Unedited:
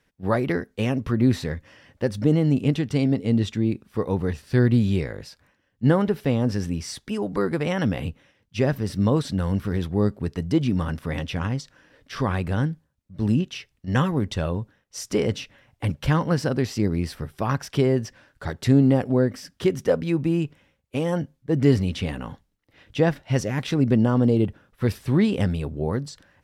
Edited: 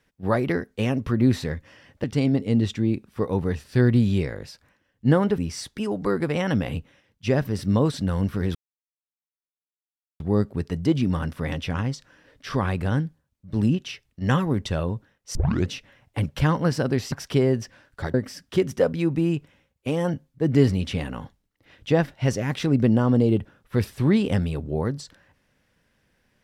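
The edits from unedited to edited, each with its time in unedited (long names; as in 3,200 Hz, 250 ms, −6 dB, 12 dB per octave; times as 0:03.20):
0:02.04–0:02.82: remove
0:06.16–0:06.69: remove
0:09.86: splice in silence 1.65 s
0:15.01: tape start 0.34 s
0:16.78–0:17.55: remove
0:18.57–0:19.22: remove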